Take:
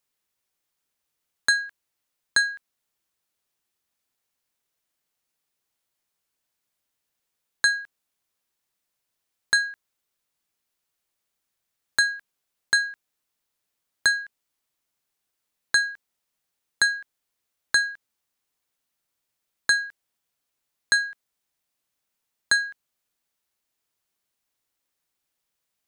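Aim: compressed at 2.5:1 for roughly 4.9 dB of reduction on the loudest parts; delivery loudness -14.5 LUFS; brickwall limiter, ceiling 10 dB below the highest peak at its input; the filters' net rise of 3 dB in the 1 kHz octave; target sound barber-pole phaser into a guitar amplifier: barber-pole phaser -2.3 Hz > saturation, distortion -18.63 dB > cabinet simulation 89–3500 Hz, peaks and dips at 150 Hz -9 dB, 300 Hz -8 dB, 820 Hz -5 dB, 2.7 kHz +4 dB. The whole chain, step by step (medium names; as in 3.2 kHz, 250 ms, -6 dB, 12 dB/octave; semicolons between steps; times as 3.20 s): peaking EQ 1 kHz +5.5 dB; compression 2.5:1, threshold -21 dBFS; peak limiter -15.5 dBFS; barber-pole phaser -2.3 Hz; saturation -24 dBFS; cabinet simulation 89–3500 Hz, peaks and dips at 150 Hz -9 dB, 300 Hz -8 dB, 820 Hz -5 dB, 2.7 kHz +4 dB; trim +21.5 dB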